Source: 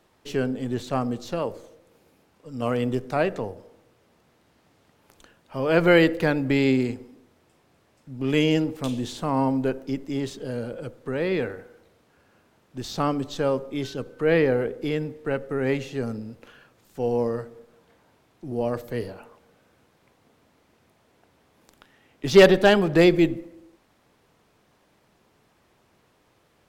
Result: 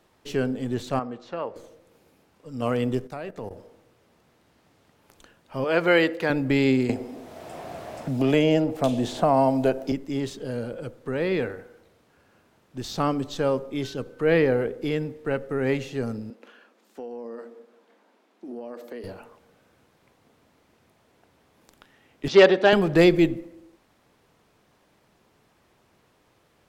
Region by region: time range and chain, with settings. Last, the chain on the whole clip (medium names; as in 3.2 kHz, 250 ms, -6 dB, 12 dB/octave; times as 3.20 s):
0.99–1.56 s: low-pass 1.5 kHz + tilt EQ +4 dB/octave
3.07–3.51 s: treble shelf 7.8 kHz +5.5 dB + level held to a coarse grid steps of 17 dB
5.64–6.30 s: high-pass 430 Hz 6 dB/octave + treble shelf 8.1 kHz -7 dB
6.89–9.92 s: peaking EQ 670 Hz +13.5 dB 0.49 oct + three bands compressed up and down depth 70%
16.30–19.04 s: elliptic high-pass 210 Hz + treble shelf 6.8 kHz -8.5 dB + compression 16:1, threshold -32 dBFS
22.28–22.73 s: band-pass 290–7500 Hz + distance through air 78 m
whole clip: none